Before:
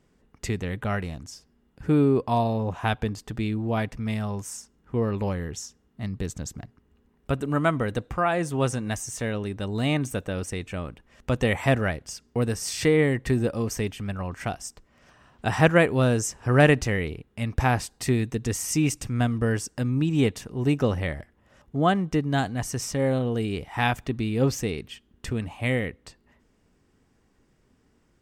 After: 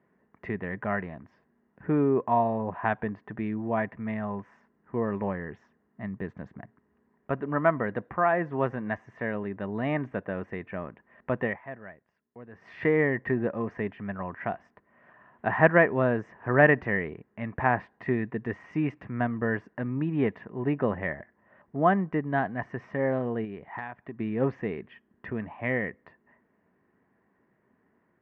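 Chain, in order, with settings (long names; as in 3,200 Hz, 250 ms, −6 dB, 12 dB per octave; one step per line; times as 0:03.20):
loudspeaker in its box 130–2,200 Hz, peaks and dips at 200 Hz +5 dB, 380 Hz +4 dB, 650 Hz +7 dB, 1,000 Hz +8 dB, 1,800 Hz +10 dB
0:11.39–0:12.72: duck −17.5 dB, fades 0.21 s
0:23.44–0:24.20: downward compressor 5 to 1, threshold −30 dBFS, peak gain reduction 15 dB
level −5.5 dB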